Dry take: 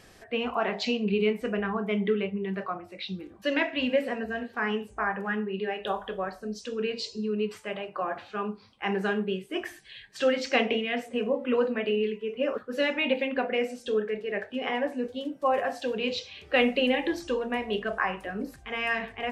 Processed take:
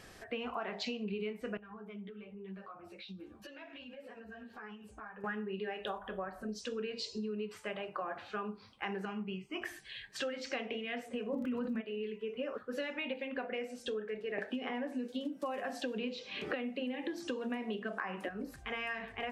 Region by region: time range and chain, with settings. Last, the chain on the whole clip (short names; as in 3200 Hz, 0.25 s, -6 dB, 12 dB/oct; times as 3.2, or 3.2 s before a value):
1.57–5.24 notch 2000 Hz, Q 8.9 + compressor 12:1, threshold -42 dBFS + ensemble effect
5.98–6.49 bell 5100 Hz -13.5 dB 1.3 oct + notch 450 Hz, Q 5.1 + upward compressor, threshold -38 dBFS
9.05–9.62 LPF 3800 Hz 6 dB/oct + fixed phaser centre 2500 Hz, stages 8
11.32–11.8 resonant low shelf 310 Hz +11.5 dB, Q 1.5 + crackle 34/s -39 dBFS + fast leveller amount 70%
14.38–18.29 resonant high-pass 220 Hz, resonance Q 2.6 + three-band squash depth 100%
whole clip: bell 1400 Hz +2.5 dB; compressor 6:1, threshold -35 dBFS; gain -1 dB